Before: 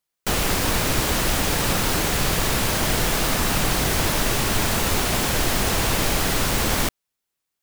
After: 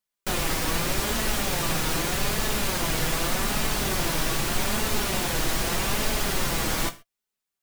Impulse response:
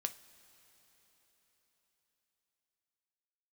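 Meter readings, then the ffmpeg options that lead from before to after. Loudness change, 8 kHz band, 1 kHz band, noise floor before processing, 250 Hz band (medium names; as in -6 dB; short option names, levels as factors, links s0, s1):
-4.5 dB, -4.5 dB, -4.5 dB, -82 dBFS, -4.5 dB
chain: -filter_complex "[0:a]flanger=delay=4.6:depth=1.7:regen=44:speed=0.82:shape=sinusoidal[s0];[1:a]atrim=start_sample=2205,atrim=end_sample=6174[s1];[s0][s1]afir=irnorm=-1:irlink=0"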